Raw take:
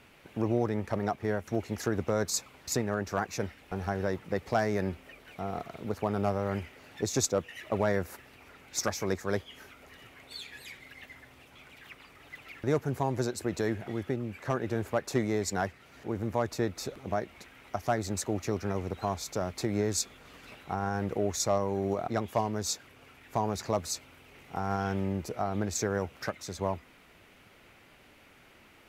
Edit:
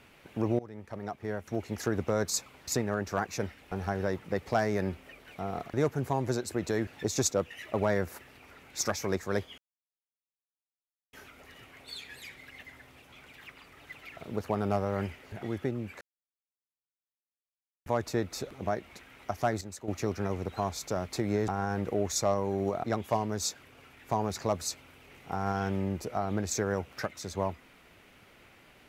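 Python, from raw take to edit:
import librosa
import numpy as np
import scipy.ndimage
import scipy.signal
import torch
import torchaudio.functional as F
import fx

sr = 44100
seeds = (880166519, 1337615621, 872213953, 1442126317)

y = fx.edit(x, sr, fx.fade_in_from(start_s=0.59, length_s=1.3, floor_db=-19.0),
    fx.swap(start_s=5.7, length_s=1.15, other_s=12.6, other_length_s=1.17),
    fx.insert_silence(at_s=9.56, length_s=1.55),
    fx.silence(start_s=14.46, length_s=1.85),
    fx.clip_gain(start_s=18.06, length_s=0.27, db=-10.0),
    fx.cut(start_s=19.93, length_s=0.79), tone=tone)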